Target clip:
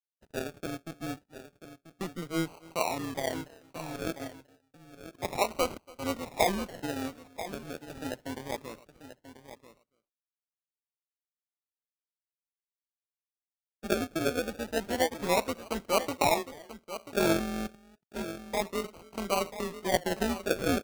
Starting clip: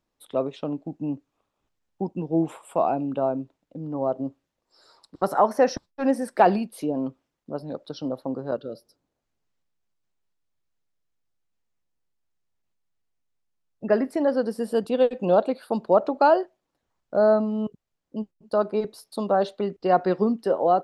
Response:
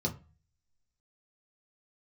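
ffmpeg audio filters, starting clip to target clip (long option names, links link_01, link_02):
-filter_complex "[0:a]highpass=frequency=78:width=0.5412,highpass=frequency=78:width=1.3066,highshelf=frequency=10000:gain=10,agate=range=-33dB:threshold=-41dB:ratio=3:detection=peak,asettb=1/sr,asplit=3[link_01][link_02][link_03];[link_01]atrim=end=3.964[link_04];[link_02]atrim=start=3.96:end=6.46,asetpts=PTS-STARTPTS,afade=type=in:duration=0.004:curve=qsin,afade=type=out:start_time=2.496:duration=0.004:curve=qsin,lowshelf=frequency=250:gain=-8[link_05];[link_03]atrim=start=6.456[link_06];[link_04][link_05]acrossfade=duration=0.004:curve1=hsin:curve2=qsin[link_07];[link_07][link_06]acrossfade=duration=0.004:curve1=qsin:curve2=hsin,aecho=1:1:284:0.0708,tremolo=f=170:d=0.71,acrusher=samples=35:mix=1:aa=0.000001:lfo=1:lforange=21:lforate=0.3,aecho=1:1:987:0.237,volume=-5dB"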